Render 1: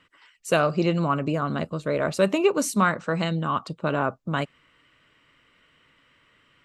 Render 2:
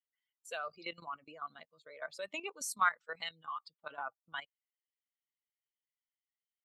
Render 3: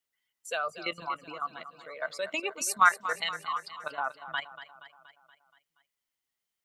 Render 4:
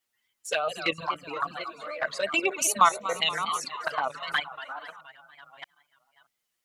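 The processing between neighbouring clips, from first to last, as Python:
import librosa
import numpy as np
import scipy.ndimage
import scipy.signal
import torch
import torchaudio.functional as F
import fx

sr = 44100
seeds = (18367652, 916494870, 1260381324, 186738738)

y1 = fx.bin_expand(x, sr, power=2.0)
y1 = scipy.signal.sosfilt(scipy.signal.butter(2, 950.0, 'highpass', fs=sr, output='sos'), y1)
y1 = fx.level_steps(y1, sr, step_db=13)
y2 = fx.echo_feedback(y1, sr, ms=237, feedback_pct=56, wet_db=-13.0)
y2 = y2 * librosa.db_to_amplitude(8.5)
y3 = fx.reverse_delay(y2, sr, ms=626, wet_db=-12)
y3 = fx.wow_flutter(y3, sr, seeds[0], rate_hz=2.1, depth_cents=86.0)
y3 = fx.env_flanger(y3, sr, rest_ms=8.6, full_db=-28.0)
y3 = y3 * librosa.db_to_amplitude(9.0)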